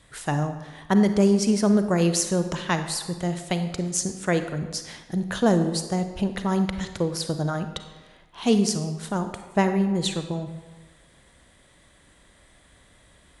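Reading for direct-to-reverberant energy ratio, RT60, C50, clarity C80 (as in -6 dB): 8.0 dB, 1.2 s, 9.0 dB, 10.5 dB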